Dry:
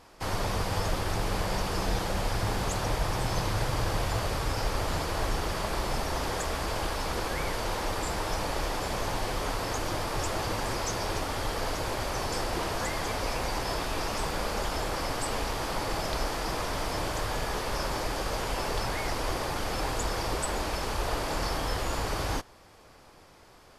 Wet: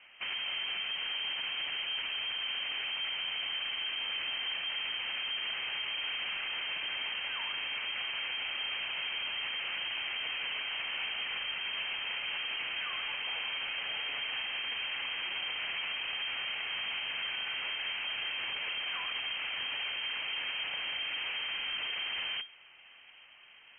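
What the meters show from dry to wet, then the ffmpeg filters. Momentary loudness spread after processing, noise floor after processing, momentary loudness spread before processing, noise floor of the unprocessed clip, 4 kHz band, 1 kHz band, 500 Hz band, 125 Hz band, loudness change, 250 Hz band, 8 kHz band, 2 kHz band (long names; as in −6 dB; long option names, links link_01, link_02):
1 LU, −56 dBFS, 2 LU, −54 dBFS, +5.0 dB, −14.5 dB, −21.5 dB, below −30 dB, −2.5 dB, −24.5 dB, below −40 dB, +1.5 dB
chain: -af "lowpass=frequency=2700:width_type=q:width=0.5098,lowpass=frequency=2700:width_type=q:width=0.6013,lowpass=frequency=2700:width_type=q:width=0.9,lowpass=frequency=2700:width_type=q:width=2.563,afreqshift=-3200,alimiter=level_in=2.5dB:limit=-24dB:level=0:latency=1:release=36,volume=-2.5dB,volume=-1.5dB"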